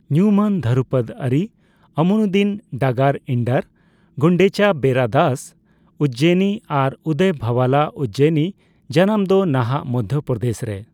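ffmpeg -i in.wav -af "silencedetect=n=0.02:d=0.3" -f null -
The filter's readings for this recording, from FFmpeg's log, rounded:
silence_start: 1.47
silence_end: 1.97 | silence_duration: 0.50
silence_start: 3.62
silence_end: 4.18 | silence_duration: 0.55
silence_start: 5.48
silence_end: 6.00 | silence_duration: 0.52
silence_start: 8.51
silence_end: 8.90 | silence_duration: 0.39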